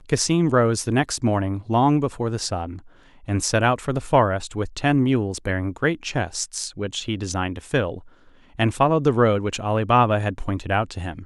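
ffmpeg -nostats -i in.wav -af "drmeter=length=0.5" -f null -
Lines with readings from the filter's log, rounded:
Channel 1: DR: 11.9
Overall DR: 11.9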